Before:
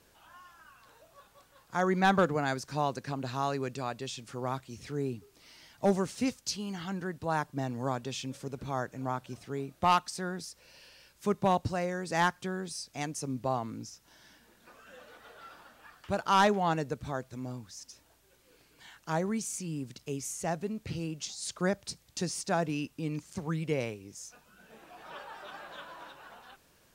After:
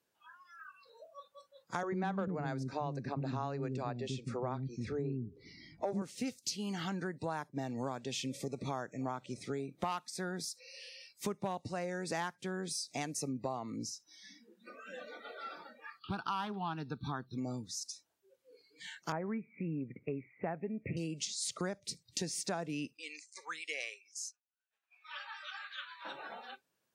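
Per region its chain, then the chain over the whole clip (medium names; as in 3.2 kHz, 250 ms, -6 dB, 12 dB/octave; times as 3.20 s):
1.83–6.02 s: tilt EQ -3 dB/octave + bands offset in time highs, lows 90 ms, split 330 Hz
15.99–17.38 s: static phaser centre 2.1 kHz, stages 6 + loudspeaker Doppler distortion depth 0.11 ms
19.12–20.97 s: short-mantissa float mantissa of 4-bit + steep low-pass 2.5 kHz 72 dB/octave
22.97–26.05 s: expander -47 dBFS + high-pass 1.5 kHz + treble shelf 11 kHz -9.5 dB
whole clip: spectral noise reduction 24 dB; high-pass 140 Hz 12 dB/octave; compression 6:1, threshold -41 dBFS; trim +6 dB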